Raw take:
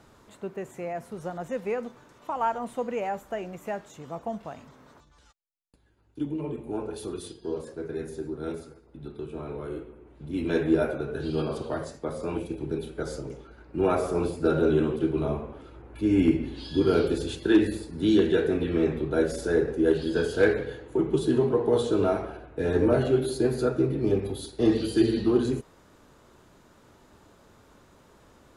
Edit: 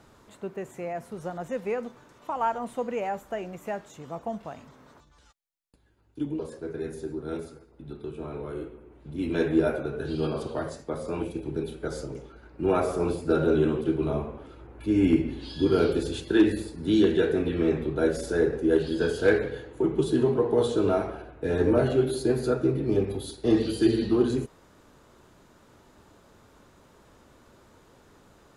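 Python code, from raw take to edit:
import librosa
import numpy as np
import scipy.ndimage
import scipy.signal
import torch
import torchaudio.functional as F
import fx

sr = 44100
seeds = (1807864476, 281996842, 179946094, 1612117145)

y = fx.edit(x, sr, fx.cut(start_s=6.39, length_s=1.15), tone=tone)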